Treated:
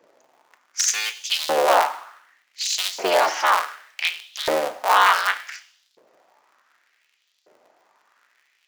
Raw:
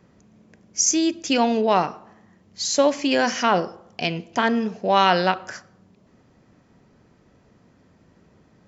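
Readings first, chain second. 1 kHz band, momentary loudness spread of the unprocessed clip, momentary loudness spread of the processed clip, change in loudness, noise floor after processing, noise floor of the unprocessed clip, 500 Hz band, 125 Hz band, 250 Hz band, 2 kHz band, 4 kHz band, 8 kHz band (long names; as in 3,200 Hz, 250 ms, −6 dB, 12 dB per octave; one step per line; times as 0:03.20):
+2.0 dB, 11 LU, 13 LU, 0.0 dB, −68 dBFS, −58 dBFS, −2.0 dB, below −20 dB, −16.5 dB, +3.5 dB, +2.5 dB, can't be measured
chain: sub-harmonics by changed cycles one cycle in 3, inverted
coupled-rooms reverb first 0.83 s, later 2.2 s, from −28 dB, DRR 10.5 dB
auto-filter high-pass saw up 0.67 Hz 460–4,200 Hz
level −2 dB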